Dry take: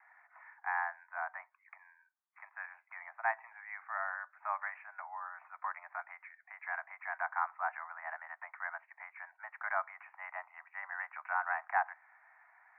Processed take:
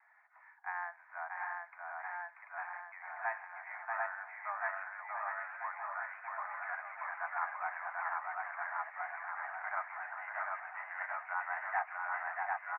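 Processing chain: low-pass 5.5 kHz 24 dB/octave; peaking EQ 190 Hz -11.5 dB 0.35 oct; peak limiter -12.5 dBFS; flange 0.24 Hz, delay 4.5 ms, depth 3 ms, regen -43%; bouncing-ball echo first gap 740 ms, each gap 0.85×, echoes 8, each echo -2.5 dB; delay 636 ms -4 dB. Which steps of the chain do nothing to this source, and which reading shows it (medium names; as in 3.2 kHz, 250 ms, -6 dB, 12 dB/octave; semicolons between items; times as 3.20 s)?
low-pass 5.5 kHz: input has nothing above 2.6 kHz; peaking EQ 190 Hz: input has nothing below 540 Hz; peak limiter -12.5 dBFS: peak at its input -18.0 dBFS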